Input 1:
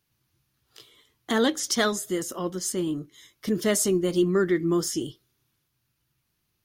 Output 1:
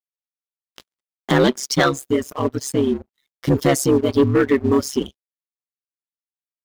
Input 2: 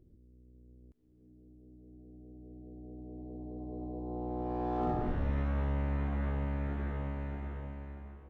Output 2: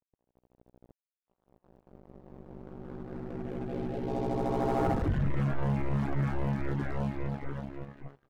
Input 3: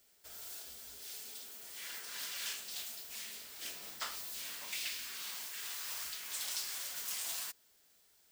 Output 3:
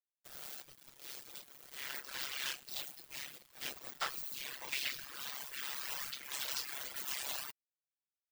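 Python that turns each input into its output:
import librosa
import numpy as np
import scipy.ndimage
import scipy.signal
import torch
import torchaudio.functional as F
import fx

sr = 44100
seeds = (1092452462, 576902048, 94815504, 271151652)

y = fx.peak_eq(x, sr, hz=9400.0, db=-10.5, octaves=1.9)
y = np.sign(y) * np.maximum(np.abs(y) - 10.0 ** (-54.0 / 20.0), 0.0)
y = y * np.sin(2.0 * np.pi * 68.0 * np.arange(len(y)) / sr)
y = fx.dereverb_blind(y, sr, rt60_s=1.5)
y = fx.leveller(y, sr, passes=2)
y = y * 10.0 ** (6.5 / 20.0)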